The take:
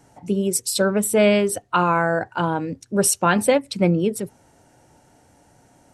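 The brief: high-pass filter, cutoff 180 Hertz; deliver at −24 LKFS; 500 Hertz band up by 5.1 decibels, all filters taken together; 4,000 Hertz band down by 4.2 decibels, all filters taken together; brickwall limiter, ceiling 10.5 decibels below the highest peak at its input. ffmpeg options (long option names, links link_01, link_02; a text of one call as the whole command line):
ffmpeg -i in.wav -af "highpass=180,equalizer=frequency=500:width_type=o:gain=6.5,equalizer=frequency=4000:width_type=o:gain=-6,volume=-3dB,alimiter=limit=-13dB:level=0:latency=1" out.wav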